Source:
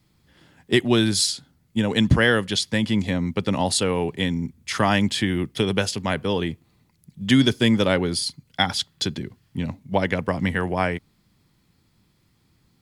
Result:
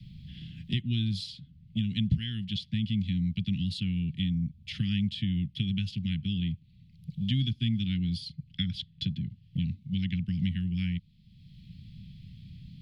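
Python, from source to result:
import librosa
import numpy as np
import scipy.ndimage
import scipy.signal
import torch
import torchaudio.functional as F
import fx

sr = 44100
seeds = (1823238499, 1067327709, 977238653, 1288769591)

y = scipy.signal.sosfilt(scipy.signal.ellip(3, 1.0, 70, [180.0, 3000.0], 'bandstop', fs=sr, output='sos'), x)
y = fx.air_absorb(y, sr, metres=390.0)
y = fx.band_squash(y, sr, depth_pct=70)
y = y * librosa.db_to_amplitude(-1.0)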